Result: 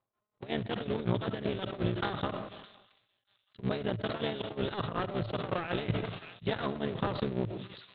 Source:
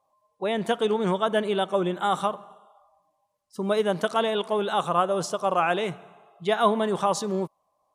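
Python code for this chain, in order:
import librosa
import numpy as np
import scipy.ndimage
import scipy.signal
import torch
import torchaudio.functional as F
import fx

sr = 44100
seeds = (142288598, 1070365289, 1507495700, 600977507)

y = fx.cycle_switch(x, sr, every=3, mode='muted')
y = fx.peak_eq(y, sr, hz=890.0, db=-7.5, octaves=1.3)
y = fx.rev_freeverb(y, sr, rt60_s=0.52, hf_ratio=0.4, predelay_ms=45, drr_db=13.5)
y = fx.level_steps(y, sr, step_db=17)
y = scipy.signal.sosfilt(scipy.signal.butter(16, 4000.0, 'lowpass', fs=sr, output='sos'), y)
y = fx.echo_wet_highpass(y, sr, ms=613, feedback_pct=47, hz=2900.0, wet_db=-19.5)
y = y * (1.0 - 0.94 / 2.0 + 0.94 / 2.0 * np.cos(2.0 * np.pi * 5.4 * (np.arange(len(y)) / sr)))
y = fx.peak_eq(y, sr, hz=110.0, db=13.5, octaves=0.69)
y = fx.transient(y, sr, attack_db=7, sustain_db=-5)
y = fx.sustainer(y, sr, db_per_s=54.0)
y = y * 10.0 ** (-1.5 / 20.0)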